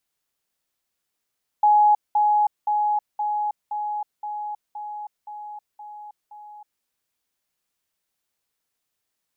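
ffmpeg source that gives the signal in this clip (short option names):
-f lavfi -i "aevalsrc='pow(10,(-12.5-3*floor(t/0.52))/20)*sin(2*PI*838*t)*clip(min(mod(t,0.52),0.32-mod(t,0.52))/0.005,0,1)':d=5.2:s=44100"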